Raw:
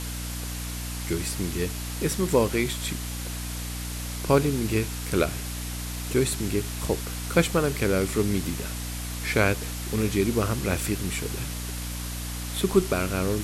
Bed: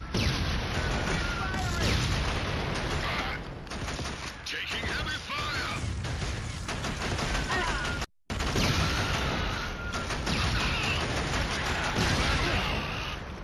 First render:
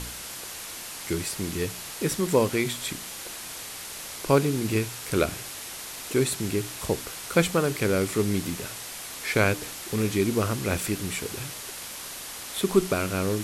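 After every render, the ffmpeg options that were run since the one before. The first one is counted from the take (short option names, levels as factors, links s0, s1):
-af "bandreject=f=60:t=h:w=4,bandreject=f=120:t=h:w=4,bandreject=f=180:t=h:w=4,bandreject=f=240:t=h:w=4,bandreject=f=300:t=h:w=4"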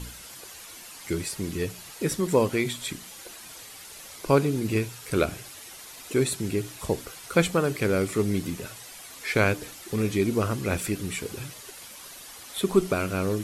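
-af "afftdn=nr=9:nf=-39"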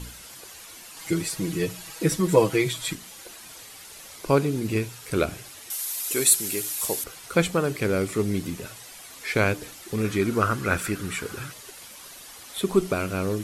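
-filter_complex "[0:a]asettb=1/sr,asplit=3[s0][s1][s2];[s0]atrim=end=0.964[s3];[s1]atrim=start=0.96:end=2.95,asetpts=PTS-STARTPTS,afade=t=in:d=0.004:c=qsin,afade=t=out:st=1.986:d=0.004:c=qsin,aecho=1:1:6.2:1,atrim=end_sample=87759[s4];[s2]atrim=start=2.946[s5];[s3][s4]acrossfade=d=0.004:c1=hsin:c2=qsin[s6];[s6][s5]acrossfade=d=0.004:c1=qsin:c2=hsin,asettb=1/sr,asplit=3[s7][s8][s9];[s7]atrim=end=5.704[s10];[s8]atrim=start=5.7:end=7.04,asetpts=PTS-STARTPTS,afade=t=in:d=0.004:c=qsin,afade=t=out:st=1.336:d=0.004:c=qsin,aemphasis=mode=production:type=riaa[s11];[s9]atrim=start=7.036[s12];[s10][s11]acrossfade=d=0.004:c1=hsin:c2=qsin[s13];[s13][s12]acrossfade=d=0.004:c1=qsin:c2=hsin,asettb=1/sr,asplit=3[s14][s15][s16];[s14]atrim=end=10.044[s17];[s15]atrim=start=10.04:end=11.52,asetpts=PTS-STARTPTS,afade=t=in:d=0.004:c=qsin,afade=t=out:st=1.476:d=0.004:c=qsin,equalizer=f=1400:w=2.1:g=12[s18];[s16]atrim=start=11.516[s19];[s17][s18]acrossfade=d=0.004:c1=hsin:c2=qsin[s20];[s20][s19]acrossfade=d=0.004:c1=qsin:c2=hsin"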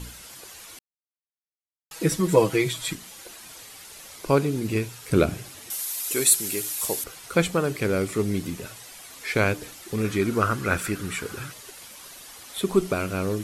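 -filter_complex "[0:a]asettb=1/sr,asplit=3[s0][s1][s2];[s0]atrim=end=5.104[s3];[s1]atrim=start=5.1:end=5.83,asetpts=PTS-STARTPTS,afade=t=in:d=0.004:c=qsin,afade=t=out:st=0.726:d=0.004:c=qsin,equalizer=f=160:w=0.44:g=7.5[s4];[s2]atrim=start=5.826[s5];[s3][s4]acrossfade=d=0.004:c1=hsin:c2=qsin[s6];[s6][s5]acrossfade=d=0.004:c1=qsin:c2=hsin,asplit=3[s7][s8][s9];[s7]atrim=end=0.79,asetpts=PTS-STARTPTS,afade=t=out:st=0.786:d=0.004:c=hsin[s10];[s8]atrim=start=0.79:end=1.91,asetpts=PTS-STARTPTS,volume=0[s11];[s9]atrim=start=1.91,asetpts=PTS-STARTPTS,afade=t=in:d=0.004:c=hsin[s12];[s10][s11][s12]concat=n=3:v=0:a=1"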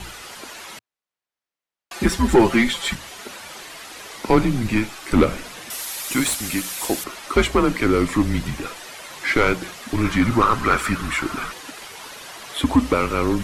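-filter_complex "[0:a]asplit=2[s0][s1];[s1]highpass=f=720:p=1,volume=10,asoftclip=type=tanh:threshold=0.668[s2];[s0][s2]amix=inputs=2:normalize=0,lowpass=f=1800:p=1,volume=0.501,afreqshift=-120"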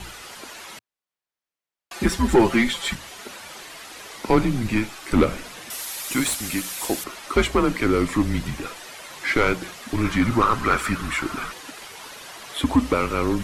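-af "volume=0.794"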